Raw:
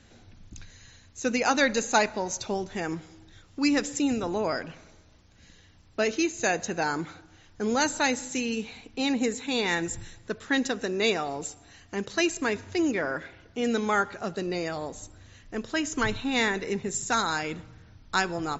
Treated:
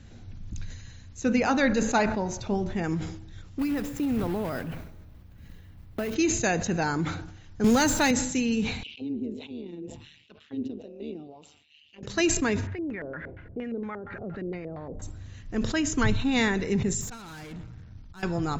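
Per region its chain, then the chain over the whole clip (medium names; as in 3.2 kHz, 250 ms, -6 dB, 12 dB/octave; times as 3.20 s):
1.21–2.84 s: treble shelf 4.9 kHz -12 dB + de-hum 72.74 Hz, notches 24
3.59–6.16 s: block-companded coder 3-bit + compression 10:1, threshold -26 dBFS + peaking EQ 6.5 kHz -11.5 dB 1.8 oct
7.64–8.11 s: jump at every zero crossing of -30 dBFS + three bands compressed up and down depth 40%
8.83–12.03 s: FFT filter 240 Hz 0 dB, 1.7 kHz -17 dB, 2.9 kHz +10 dB, 7.2 kHz -3 dB + AM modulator 150 Hz, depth 60% + auto-wah 330–3300 Hz, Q 2.9, down, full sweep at -28.5 dBFS
12.67–15.02 s: compression 4:1, threshold -38 dBFS + LFO low-pass square 4.3 Hz 500–1900 Hz
17.01–18.23 s: slow attack 326 ms + valve stage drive 42 dB, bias 0.65
whole clip: tone controls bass +11 dB, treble -1 dB; decay stretcher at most 62 dB/s; trim -1 dB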